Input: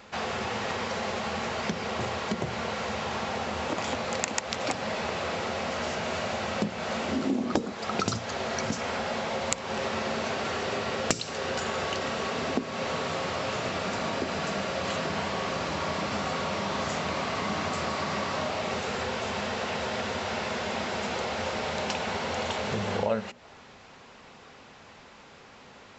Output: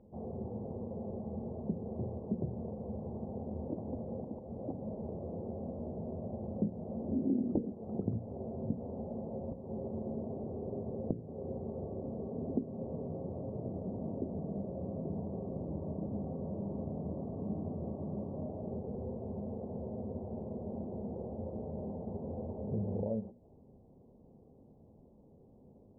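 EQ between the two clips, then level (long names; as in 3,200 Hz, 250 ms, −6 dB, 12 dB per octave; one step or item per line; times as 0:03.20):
Gaussian smoothing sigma 17 samples
high-frequency loss of the air 490 metres
−1.0 dB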